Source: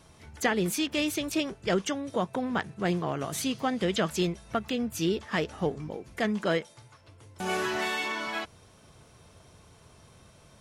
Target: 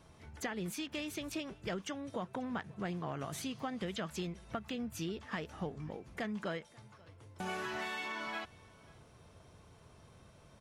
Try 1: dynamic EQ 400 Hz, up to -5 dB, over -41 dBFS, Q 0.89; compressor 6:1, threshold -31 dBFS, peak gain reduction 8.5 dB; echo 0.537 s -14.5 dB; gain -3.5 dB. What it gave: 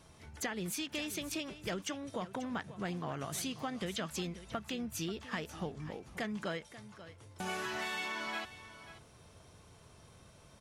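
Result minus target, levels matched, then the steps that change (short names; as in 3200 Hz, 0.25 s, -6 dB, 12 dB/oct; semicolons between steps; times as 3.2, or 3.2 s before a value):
echo-to-direct +10 dB; 8000 Hz band +4.5 dB
add after compressor: bell 12000 Hz -6.5 dB 2.7 oct; change: echo 0.537 s -24.5 dB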